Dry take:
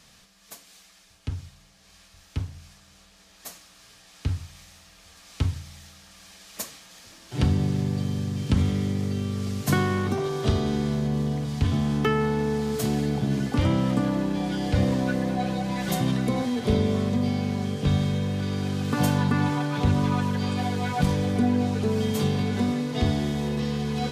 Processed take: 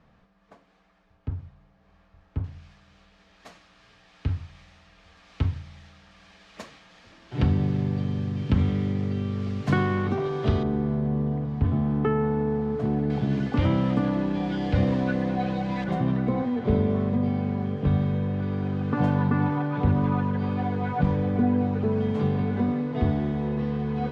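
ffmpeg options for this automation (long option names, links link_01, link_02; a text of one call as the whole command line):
ffmpeg -i in.wav -af "asetnsamples=nb_out_samples=441:pad=0,asendcmd='2.44 lowpass f 2700;10.63 lowpass f 1200;13.1 lowpass f 3100;15.84 lowpass f 1600',lowpass=1200" out.wav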